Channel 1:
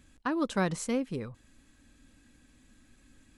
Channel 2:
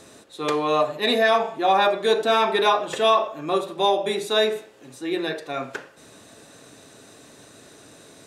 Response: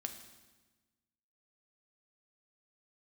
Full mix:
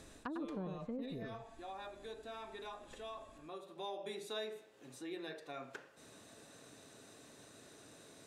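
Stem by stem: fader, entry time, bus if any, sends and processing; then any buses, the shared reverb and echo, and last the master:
-1.0 dB, 0.00 s, no send, echo send -5 dB, treble ducked by the level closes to 580 Hz, closed at -27.5 dBFS
-11.0 dB, 0.00 s, send -20.5 dB, no echo send, auto duck -16 dB, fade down 1.00 s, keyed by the first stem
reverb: on, RT60 1.2 s, pre-delay 4 ms
echo: echo 0.1 s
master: compressor 2:1, threshold -49 dBFS, peak gain reduction 12.5 dB

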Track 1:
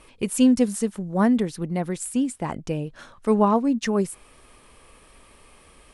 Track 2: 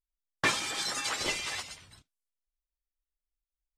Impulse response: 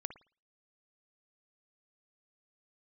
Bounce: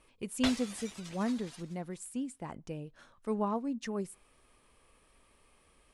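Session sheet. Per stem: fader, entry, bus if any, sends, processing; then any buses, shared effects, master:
-14.0 dB, 0.00 s, send -22.5 dB, dry
-0.5 dB, 0.00 s, send -22 dB, transient shaper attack +5 dB, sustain 0 dB; ring modulator with a swept carrier 1400 Hz, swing 25%, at 2.3 Hz; auto duck -20 dB, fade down 1.10 s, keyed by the first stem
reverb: on, pre-delay 54 ms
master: dry

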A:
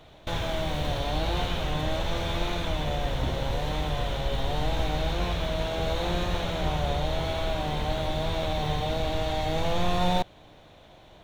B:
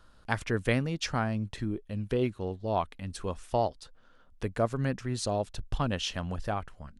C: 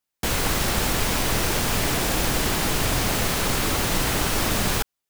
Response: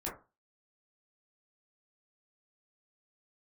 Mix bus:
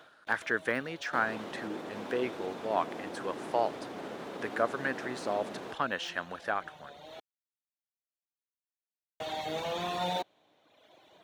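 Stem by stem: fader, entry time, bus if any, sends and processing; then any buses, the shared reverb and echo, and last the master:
-2.5 dB, 0.00 s, muted 7.2–9.2, no send, reverb removal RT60 1.3 s; auto duck -15 dB, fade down 0.20 s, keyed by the second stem
-2.0 dB, 0.00 s, no send, bell 1600 Hz +11.5 dB 0.8 oct; de-esser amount 90%; tone controls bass -5 dB, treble -2 dB
-8.5 dB, 0.90 s, no send, limiter -14 dBFS, peak gain reduction 4 dB; band-pass 330 Hz, Q 0.67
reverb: off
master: HPF 260 Hz 12 dB/oct

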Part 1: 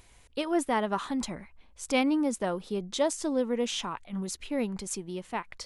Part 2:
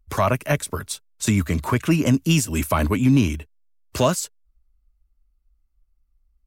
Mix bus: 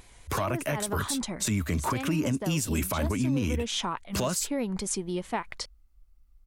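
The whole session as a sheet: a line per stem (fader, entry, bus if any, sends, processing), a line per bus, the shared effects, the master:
+1.5 dB, 0.00 s, no send, notch 2700 Hz, Q 20; compressor, threshold -30 dBFS, peak gain reduction 9.5 dB; vibrato 4.6 Hz 43 cents
+2.0 dB, 0.20 s, no send, compressor, threshold -20 dBFS, peak gain reduction 8 dB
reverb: off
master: vocal rider within 4 dB 0.5 s; limiter -19 dBFS, peak gain reduction 11 dB

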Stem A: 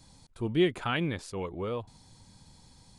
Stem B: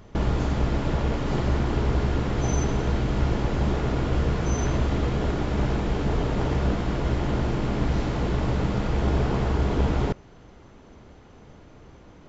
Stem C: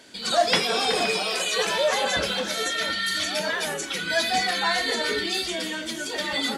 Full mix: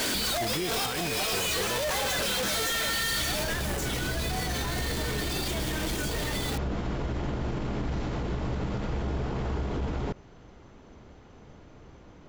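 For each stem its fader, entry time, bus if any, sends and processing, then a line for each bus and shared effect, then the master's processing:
-2.0 dB, 0.00 s, no send, dry
-2.0 dB, 0.00 s, no send, auto duck -18 dB, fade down 0.30 s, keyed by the first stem
-3.0 dB, 0.00 s, no send, infinite clipping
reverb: off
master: limiter -23 dBFS, peak gain reduction 11.5 dB

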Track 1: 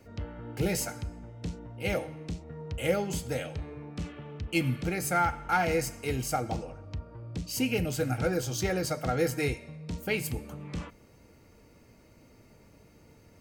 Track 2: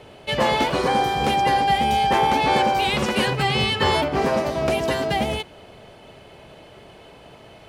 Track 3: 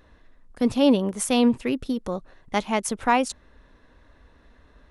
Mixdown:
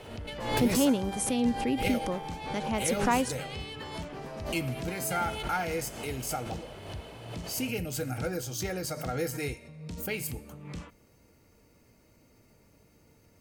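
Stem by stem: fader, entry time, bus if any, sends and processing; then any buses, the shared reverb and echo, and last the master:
-5.0 dB, 0.00 s, no send, dry
-2.0 dB, 0.00 s, no send, compressor 6:1, threshold -29 dBFS, peak gain reduction 13 dB; auto duck -9 dB, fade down 0.20 s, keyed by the third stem
-3.5 dB, 0.00 s, no send, bell 270 Hz +3 dB; compressor 1.5:1, threshold -24 dBFS, peak gain reduction 5 dB; rotary speaker horn 0.9 Hz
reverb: off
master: high shelf 7100 Hz +7.5 dB; backwards sustainer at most 67 dB/s

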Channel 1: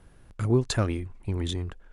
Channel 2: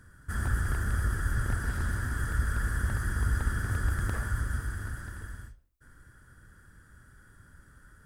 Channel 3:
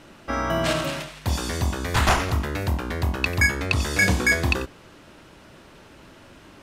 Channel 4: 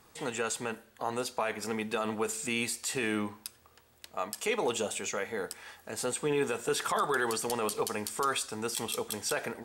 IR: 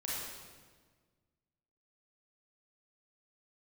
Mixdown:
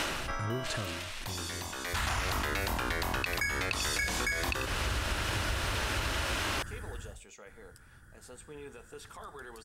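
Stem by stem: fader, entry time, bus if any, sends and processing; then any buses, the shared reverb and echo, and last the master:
-13.5 dB, 0.00 s, no send, backwards sustainer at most 26 dB/s
-1.5 dB, 1.65 s, no send, dry
-2.0 dB, 0.00 s, no send, HPF 1200 Hz 6 dB/oct; fast leveller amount 70%; auto duck -15 dB, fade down 0.40 s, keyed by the first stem
-17.5 dB, 2.25 s, no send, dry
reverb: off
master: compressor 12:1, threshold -28 dBFS, peak gain reduction 12.5 dB

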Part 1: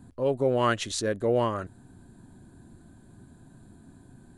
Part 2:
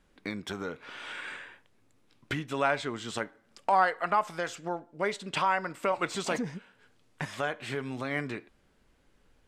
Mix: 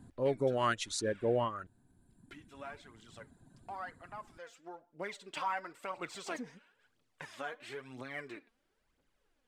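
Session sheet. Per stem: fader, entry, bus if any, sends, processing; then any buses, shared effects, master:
-5.0 dB, 0.00 s, no send, reverb removal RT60 1.9 s
-11.0 dB, 0.00 s, no send, low shelf 190 Hz -9 dB; phaser 1 Hz, delay 4.5 ms, feedback 57%; auto duck -10 dB, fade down 0.60 s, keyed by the first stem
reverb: off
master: dry

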